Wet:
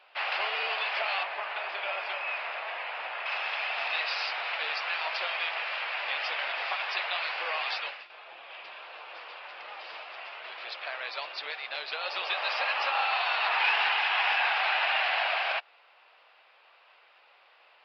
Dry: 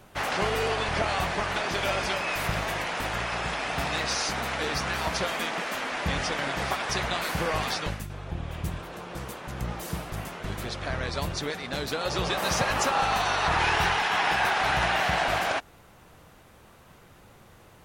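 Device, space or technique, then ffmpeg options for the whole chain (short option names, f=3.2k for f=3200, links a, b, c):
musical greeting card: -filter_complex "[0:a]asettb=1/sr,asplit=3[a][b][c];[a]atrim=end=1.234[d];[b]atrim=start=1.23:end=3.26,asetpts=PTS-STARTPTS,afade=t=in:d=0.004:c=qsin,afade=t=out:st=2.026:d=0.004:c=qsin,lowpass=f=1.6k:p=1[e];[c]atrim=start=3.256[f];[d][e]acrossfade=d=0.004:c1=hsin:c2=qsin[g];[g][f]acrossfade=d=0.004:c1=qsin:c2=hsin,aresample=11025,aresample=44100,highpass=f=610:w=0.5412,highpass=f=610:w=1.3066,equalizer=f=2.6k:t=o:w=0.52:g=9,volume=-4dB"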